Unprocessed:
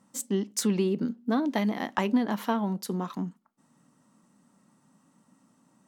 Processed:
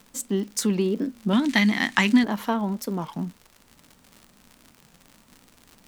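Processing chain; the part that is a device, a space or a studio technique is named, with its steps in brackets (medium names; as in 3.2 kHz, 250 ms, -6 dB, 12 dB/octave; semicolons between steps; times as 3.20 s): warped LP (warped record 33 1/3 rpm, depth 250 cents; crackle 97 per s -38 dBFS; pink noise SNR 32 dB); 1.33–2.24 s: graphic EQ 125/250/500/2000/4000/8000 Hz +5/+5/-10/+11/+8/+11 dB; trim +2.5 dB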